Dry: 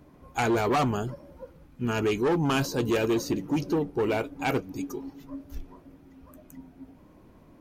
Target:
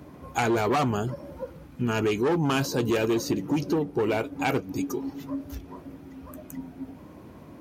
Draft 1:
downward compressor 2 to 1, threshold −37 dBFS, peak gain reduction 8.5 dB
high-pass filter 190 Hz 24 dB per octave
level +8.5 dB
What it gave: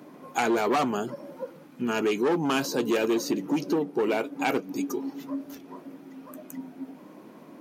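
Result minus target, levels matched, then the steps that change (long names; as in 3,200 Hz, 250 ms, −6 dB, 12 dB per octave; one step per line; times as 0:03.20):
125 Hz band −10.0 dB
change: high-pass filter 61 Hz 24 dB per octave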